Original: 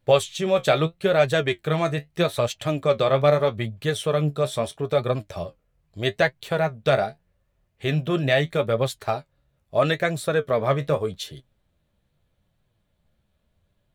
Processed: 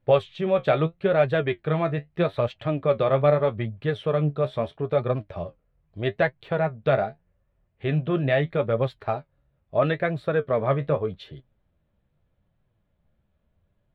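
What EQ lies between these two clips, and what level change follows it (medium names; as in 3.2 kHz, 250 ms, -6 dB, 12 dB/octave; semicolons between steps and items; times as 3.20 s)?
distance through air 410 m; 0.0 dB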